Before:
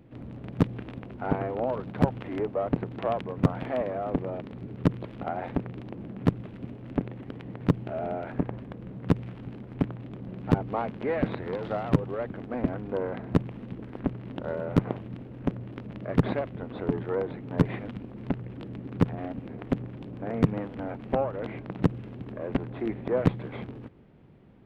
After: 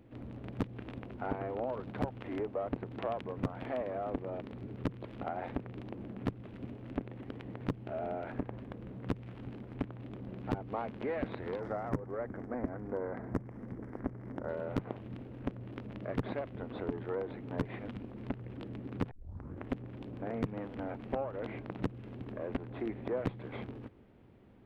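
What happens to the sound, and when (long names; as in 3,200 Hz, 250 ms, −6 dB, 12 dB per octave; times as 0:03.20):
0:11.59–0:14.49: flat-topped bell 3,300 Hz −15.5 dB 1 octave
0:19.11: tape start 0.59 s
whole clip: parametric band 160 Hz −12 dB 0.27 octaves; downward compressor 2 to 1, threshold −32 dBFS; level −3 dB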